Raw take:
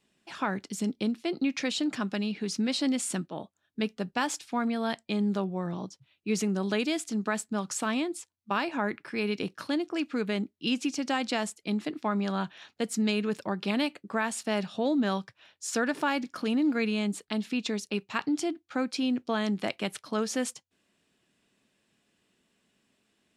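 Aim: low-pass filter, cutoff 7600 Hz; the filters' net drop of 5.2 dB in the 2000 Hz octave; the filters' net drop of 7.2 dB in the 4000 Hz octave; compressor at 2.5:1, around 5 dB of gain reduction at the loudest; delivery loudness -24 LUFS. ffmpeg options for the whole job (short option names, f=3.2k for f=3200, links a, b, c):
-af "lowpass=7.6k,equalizer=f=2k:t=o:g=-5,equalizer=f=4k:t=o:g=-7.5,acompressor=threshold=-31dB:ratio=2.5,volume=11.5dB"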